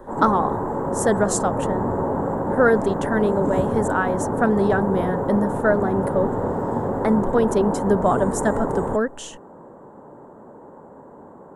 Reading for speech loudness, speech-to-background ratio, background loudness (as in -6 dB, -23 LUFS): -22.5 LUFS, 2.5 dB, -25.0 LUFS